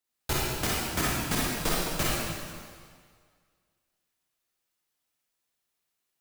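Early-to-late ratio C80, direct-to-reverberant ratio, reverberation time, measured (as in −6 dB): −1.0 dB, −6.5 dB, 1.9 s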